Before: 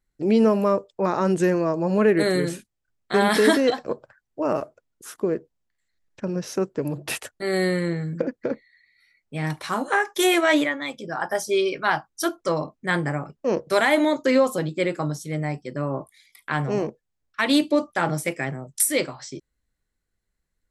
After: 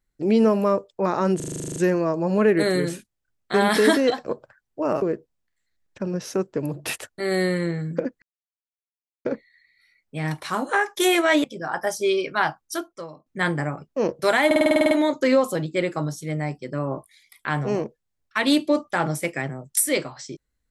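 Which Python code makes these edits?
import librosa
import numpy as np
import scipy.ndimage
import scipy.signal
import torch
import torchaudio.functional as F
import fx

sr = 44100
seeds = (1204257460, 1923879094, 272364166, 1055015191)

y = fx.edit(x, sr, fx.stutter(start_s=1.36, slice_s=0.04, count=11),
    fx.cut(start_s=4.62, length_s=0.62),
    fx.insert_silence(at_s=8.44, length_s=1.03),
    fx.cut(start_s=10.63, length_s=0.29),
    fx.fade_out_to(start_s=12.09, length_s=0.65, curve='qua', floor_db=-18.0),
    fx.stutter(start_s=13.94, slice_s=0.05, count=10), tone=tone)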